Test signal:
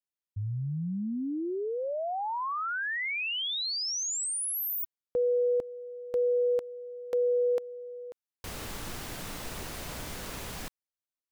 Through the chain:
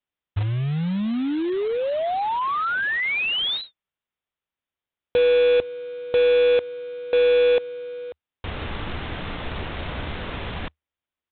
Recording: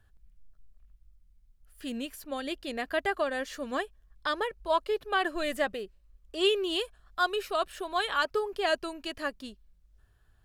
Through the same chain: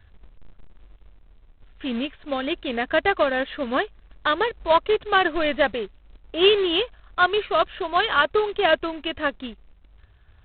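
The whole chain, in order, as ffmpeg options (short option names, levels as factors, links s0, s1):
-af "equalizer=f=76:t=o:w=0.45:g=8,aresample=8000,acrusher=bits=3:mode=log:mix=0:aa=0.000001,aresample=44100,volume=2.66"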